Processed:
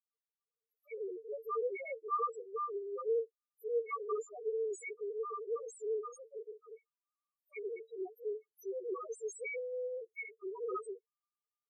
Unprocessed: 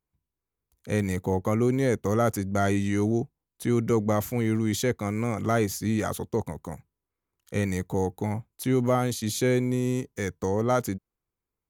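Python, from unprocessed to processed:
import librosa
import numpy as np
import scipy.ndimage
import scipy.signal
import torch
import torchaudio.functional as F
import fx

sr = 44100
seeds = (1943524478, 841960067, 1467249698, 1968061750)

y = fx.spec_gate(x, sr, threshold_db=-10, keep='weak')
y = fx.bass_treble(y, sr, bass_db=-14, treble_db=10)
y = fx.env_phaser(y, sr, low_hz=330.0, high_hz=3300.0, full_db=-30.0)
y = fx.small_body(y, sr, hz=(440.0, 1200.0, 2200.0), ring_ms=40, db=16)
y = fx.spec_topn(y, sr, count=1)
y = y * 10.0 ** (1.5 / 20.0)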